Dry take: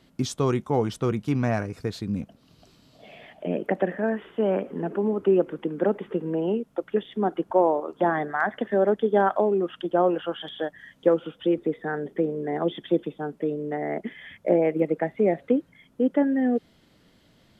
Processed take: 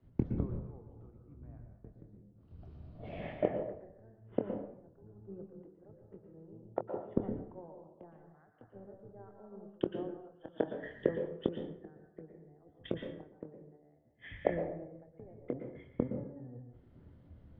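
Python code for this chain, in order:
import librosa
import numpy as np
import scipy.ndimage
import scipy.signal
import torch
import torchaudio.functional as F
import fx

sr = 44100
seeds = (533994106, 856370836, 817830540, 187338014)

y = fx.octave_divider(x, sr, octaves=1, level_db=3.0)
y = scipy.signal.sosfilt(scipy.signal.butter(2, 1400.0, 'lowpass', fs=sr, output='sos'), y)
y = fx.peak_eq(y, sr, hz=310.0, db=5.0, octaves=2.3)
y = fx.gate_flip(y, sr, shuts_db=-22.0, range_db=-33)
y = fx.doubler(y, sr, ms=25.0, db=-10.5)
y = fx.rev_plate(y, sr, seeds[0], rt60_s=1.1, hf_ratio=0.55, predelay_ms=105, drr_db=1.5)
y = fx.band_widen(y, sr, depth_pct=100)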